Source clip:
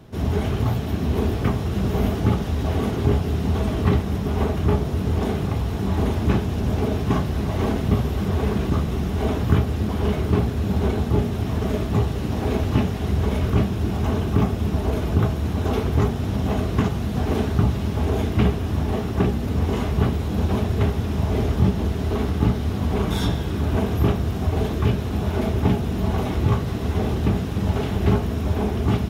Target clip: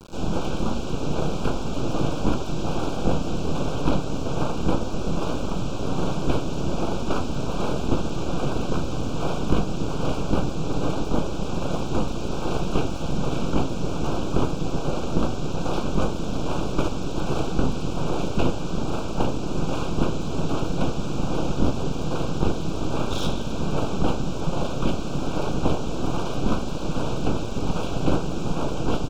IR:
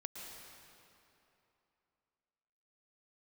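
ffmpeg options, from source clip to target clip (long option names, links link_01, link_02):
-af "aresample=16000,acrusher=bits=6:mix=0:aa=0.000001,aresample=44100,aeval=exprs='abs(val(0))':channel_layout=same,asuperstop=centerf=1900:order=8:qfactor=2.5"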